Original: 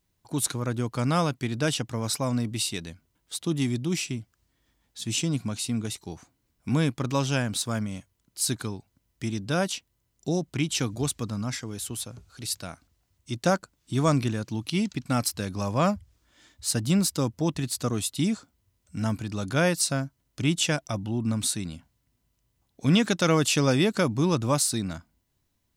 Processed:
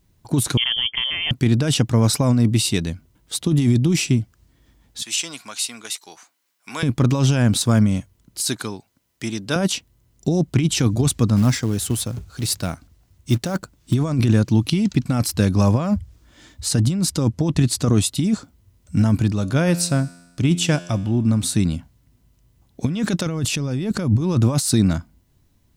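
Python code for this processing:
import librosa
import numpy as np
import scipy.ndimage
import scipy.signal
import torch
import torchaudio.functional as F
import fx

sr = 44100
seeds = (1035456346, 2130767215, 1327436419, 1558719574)

y = fx.freq_invert(x, sr, carrier_hz=3300, at=(0.57, 1.31))
y = fx.highpass(y, sr, hz=1100.0, slope=12, at=(5.02, 6.83))
y = fx.highpass(y, sr, hz=720.0, slope=6, at=(8.4, 9.56))
y = fx.quant_float(y, sr, bits=2, at=(11.36, 13.94))
y = fx.lowpass(y, sr, hz=11000.0, slope=12, at=(16.66, 18.11))
y = fx.comb_fb(y, sr, f0_hz=87.0, decay_s=1.1, harmonics='all', damping=0.0, mix_pct=50, at=(19.32, 21.55))
y = fx.low_shelf(y, sr, hz=170.0, db=8.5, at=(23.26, 24.21))
y = fx.over_compress(y, sr, threshold_db=-28.0, ratio=-1.0)
y = fx.low_shelf(y, sr, hz=400.0, db=8.5)
y = y * 10.0 ** (5.0 / 20.0)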